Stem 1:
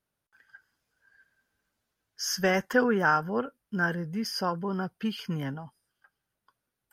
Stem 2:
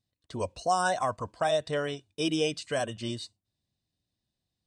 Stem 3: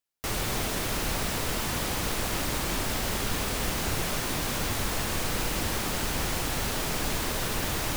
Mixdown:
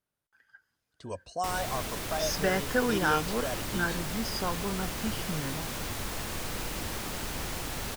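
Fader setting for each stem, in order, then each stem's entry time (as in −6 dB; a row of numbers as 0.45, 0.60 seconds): −3.5, −6.0, −6.0 decibels; 0.00, 0.70, 1.20 seconds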